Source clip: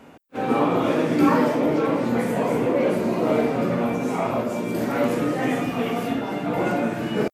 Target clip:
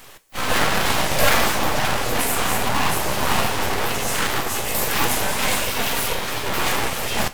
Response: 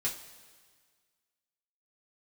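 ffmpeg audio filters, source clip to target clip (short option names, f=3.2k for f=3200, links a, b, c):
-filter_complex "[0:a]aeval=exprs='abs(val(0))':c=same,crystalizer=i=7:c=0,asplit=2[a][b];[1:a]atrim=start_sample=2205,asetrate=41454,aresample=44100[c];[b][c]afir=irnorm=-1:irlink=0,volume=-12.5dB[d];[a][d]amix=inputs=2:normalize=0,volume=-1dB"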